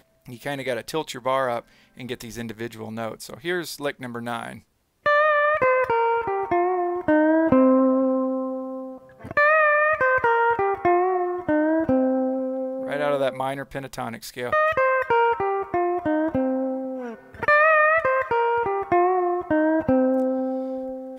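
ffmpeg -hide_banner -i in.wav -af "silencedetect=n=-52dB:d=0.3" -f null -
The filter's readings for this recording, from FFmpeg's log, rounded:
silence_start: 4.63
silence_end: 5.04 | silence_duration: 0.41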